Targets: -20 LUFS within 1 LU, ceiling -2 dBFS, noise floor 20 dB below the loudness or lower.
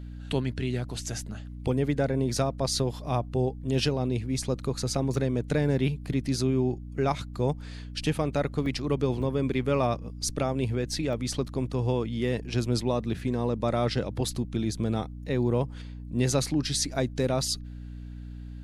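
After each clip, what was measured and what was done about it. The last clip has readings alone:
dropouts 4; longest dropout 1.4 ms; hum 60 Hz; harmonics up to 300 Hz; hum level -37 dBFS; loudness -28.5 LUFS; peak -13.0 dBFS; loudness target -20.0 LUFS
-> interpolate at 5.14/8.66/9.22/11.13, 1.4 ms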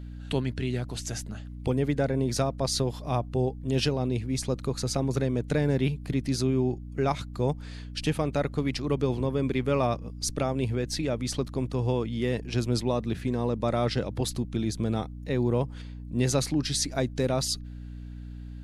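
dropouts 0; hum 60 Hz; harmonics up to 300 Hz; hum level -37 dBFS
-> de-hum 60 Hz, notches 5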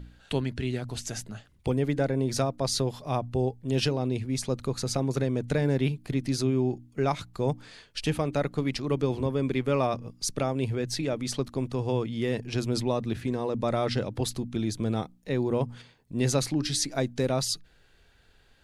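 hum none; loudness -29.0 LUFS; peak -13.5 dBFS; loudness target -20.0 LUFS
-> gain +9 dB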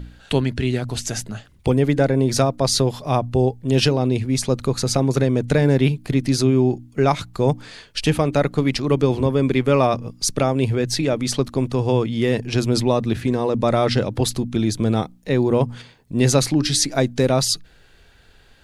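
loudness -20.0 LUFS; peak -4.5 dBFS; noise floor -52 dBFS

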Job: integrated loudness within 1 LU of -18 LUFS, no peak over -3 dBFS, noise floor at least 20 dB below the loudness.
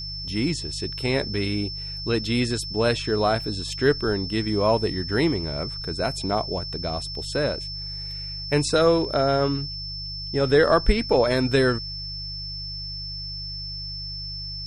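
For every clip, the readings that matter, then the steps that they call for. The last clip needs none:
hum 50 Hz; harmonics up to 150 Hz; hum level -35 dBFS; steady tone 5300 Hz; tone level -32 dBFS; loudness -24.5 LUFS; peak -5.5 dBFS; loudness target -18.0 LUFS
-> de-hum 50 Hz, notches 3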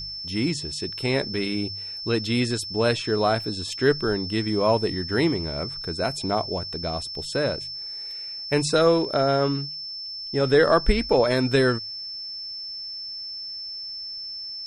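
hum none; steady tone 5300 Hz; tone level -32 dBFS
-> notch 5300 Hz, Q 30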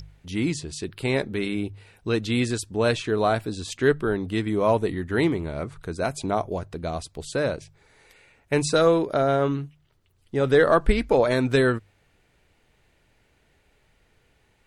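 steady tone none; loudness -24.5 LUFS; peak -6.5 dBFS; loudness target -18.0 LUFS
-> gain +6.5 dB; limiter -3 dBFS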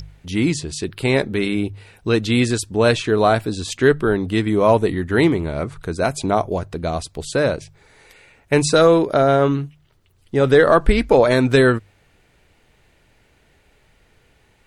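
loudness -18.0 LUFS; peak -3.0 dBFS; noise floor -58 dBFS

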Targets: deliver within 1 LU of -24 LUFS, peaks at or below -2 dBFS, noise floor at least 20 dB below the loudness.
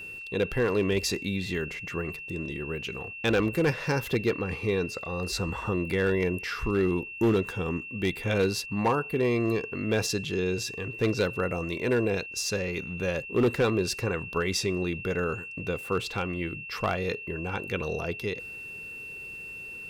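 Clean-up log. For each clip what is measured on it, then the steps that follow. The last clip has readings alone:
clipped 0.7%; flat tops at -18.0 dBFS; steady tone 2700 Hz; tone level -38 dBFS; loudness -29.0 LUFS; peak -18.0 dBFS; loudness target -24.0 LUFS
-> clip repair -18 dBFS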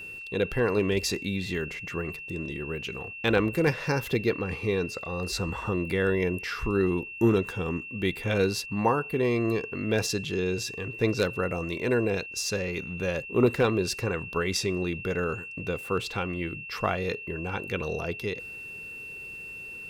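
clipped 0.0%; steady tone 2700 Hz; tone level -38 dBFS
-> notch 2700 Hz, Q 30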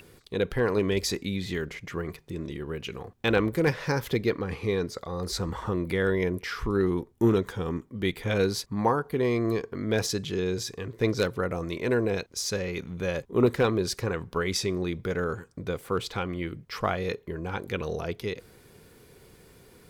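steady tone none; loudness -29.0 LUFS; peak -9.0 dBFS; loudness target -24.0 LUFS
-> gain +5 dB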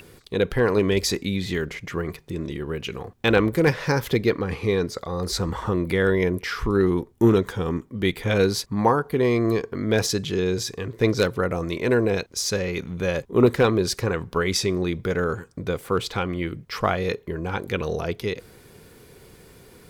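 loudness -24.0 LUFS; peak -4.0 dBFS; noise floor -51 dBFS

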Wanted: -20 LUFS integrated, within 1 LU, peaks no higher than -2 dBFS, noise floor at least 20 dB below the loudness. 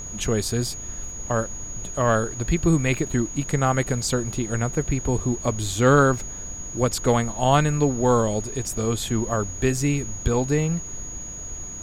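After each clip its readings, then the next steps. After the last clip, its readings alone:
steady tone 6700 Hz; tone level -34 dBFS; noise floor -35 dBFS; noise floor target -44 dBFS; loudness -23.5 LUFS; peak -4.5 dBFS; loudness target -20.0 LUFS
-> notch 6700 Hz, Q 30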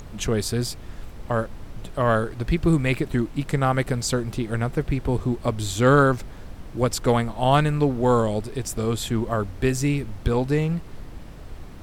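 steady tone none; noise floor -39 dBFS; noise floor target -44 dBFS
-> noise print and reduce 6 dB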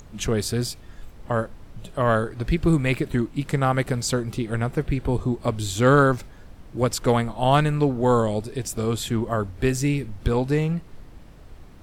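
noise floor -45 dBFS; loudness -23.5 LUFS; peak -4.5 dBFS; loudness target -20.0 LUFS
-> gain +3.5 dB; limiter -2 dBFS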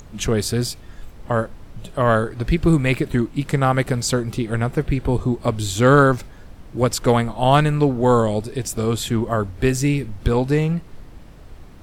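loudness -20.0 LUFS; peak -2.0 dBFS; noise floor -41 dBFS

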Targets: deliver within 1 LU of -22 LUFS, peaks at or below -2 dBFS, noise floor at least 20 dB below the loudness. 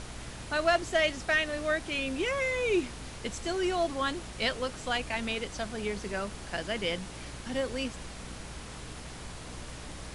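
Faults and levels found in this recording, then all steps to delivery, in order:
hum 60 Hz; harmonics up to 300 Hz; hum level -45 dBFS; noise floor -44 dBFS; noise floor target -51 dBFS; loudness -31.0 LUFS; peak -13.0 dBFS; loudness target -22.0 LUFS
-> de-hum 60 Hz, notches 5; noise print and reduce 7 dB; gain +9 dB

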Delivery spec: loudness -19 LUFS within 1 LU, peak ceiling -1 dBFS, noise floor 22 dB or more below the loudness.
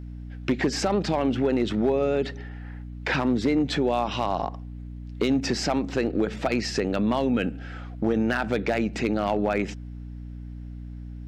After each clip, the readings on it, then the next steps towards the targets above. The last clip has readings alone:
clipped 0.6%; flat tops at -15.0 dBFS; hum 60 Hz; harmonics up to 300 Hz; hum level -35 dBFS; loudness -25.5 LUFS; peak -15.0 dBFS; loudness target -19.0 LUFS
-> clip repair -15 dBFS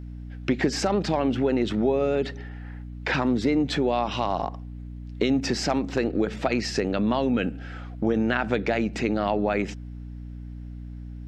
clipped 0.0%; hum 60 Hz; harmonics up to 300 Hz; hum level -35 dBFS
-> de-hum 60 Hz, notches 5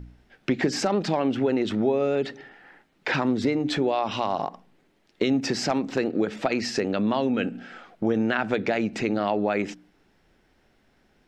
hum none; loudness -25.5 LUFS; peak -8.5 dBFS; loudness target -19.0 LUFS
-> gain +6.5 dB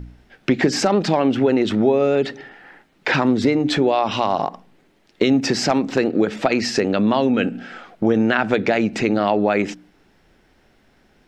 loudness -19.0 LUFS; peak -2.0 dBFS; noise floor -58 dBFS

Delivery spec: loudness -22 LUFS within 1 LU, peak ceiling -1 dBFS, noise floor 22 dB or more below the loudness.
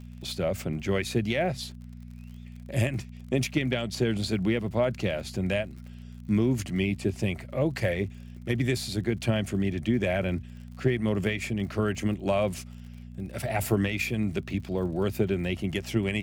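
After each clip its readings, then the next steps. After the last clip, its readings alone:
ticks 46/s; hum 60 Hz; harmonics up to 240 Hz; hum level -41 dBFS; loudness -28.5 LUFS; peak -13.0 dBFS; loudness target -22.0 LUFS
-> de-click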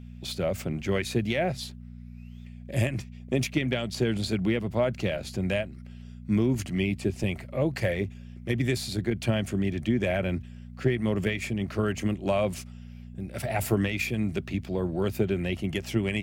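ticks 0.18/s; hum 60 Hz; harmonics up to 240 Hz; hum level -41 dBFS
-> de-hum 60 Hz, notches 4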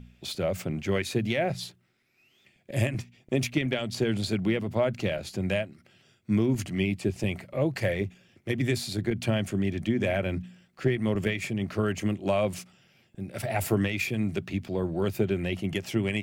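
hum none; loudness -29.0 LUFS; peak -13.0 dBFS; loudness target -22.0 LUFS
-> gain +7 dB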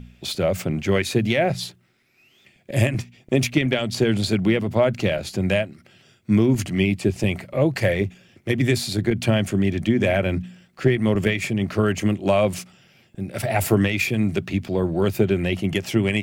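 loudness -22.0 LUFS; peak -6.0 dBFS; noise floor -59 dBFS

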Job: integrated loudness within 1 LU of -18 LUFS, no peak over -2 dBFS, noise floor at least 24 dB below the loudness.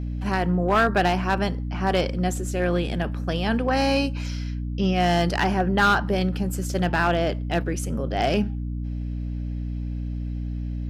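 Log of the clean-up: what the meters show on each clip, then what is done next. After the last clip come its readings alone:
clipped 0.4%; flat tops at -13.5 dBFS; hum 60 Hz; harmonics up to 300 Hz; hum level -26 dBFS; loudness -24.5 LUFS; peak -13.5 dBFS; loudness target -18.0 LUFS
-> clip repair -13.5 dBFS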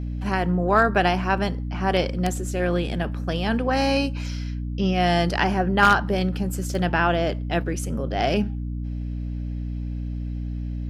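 clipped 0.0%; hum 60 Hz; harmonics up to 300 Hz; hum level -26 dBFS
-> de-hum 60 Hz, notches 5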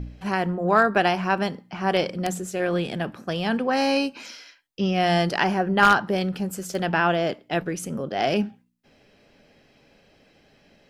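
hum none; loudness -23.5 LUFS; peak -3.5 dBFS; loudness target -18.0 LUFS
-> gain +5.5 dB; limiter -2 dBFS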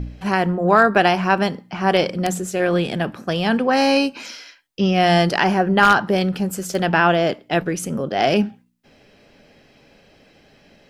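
loudness -18.5 LUFS; peak -2.0 dBFS; noise floor -54 dBFS

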